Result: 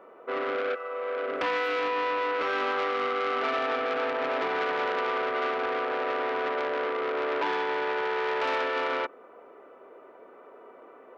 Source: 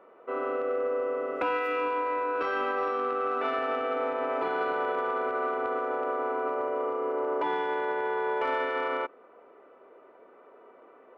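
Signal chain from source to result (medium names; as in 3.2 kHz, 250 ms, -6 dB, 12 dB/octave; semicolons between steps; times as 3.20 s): 0.74–1.26 s: high-pass 1.4 kHz -> 360 Hz 12 dB/octave; transformer saturation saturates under 1.7 kHz; trim +4 dB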